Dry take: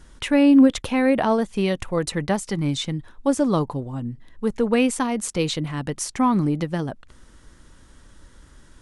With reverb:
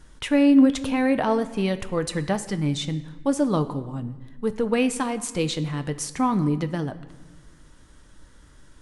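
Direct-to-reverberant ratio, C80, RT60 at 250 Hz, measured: 10.0 dB, 16.0 dB, 1.6 s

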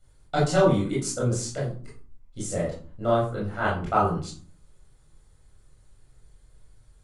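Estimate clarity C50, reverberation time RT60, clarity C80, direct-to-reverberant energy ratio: 4.5 dB, 0.45 s, 9.5 dB, -7.5 dB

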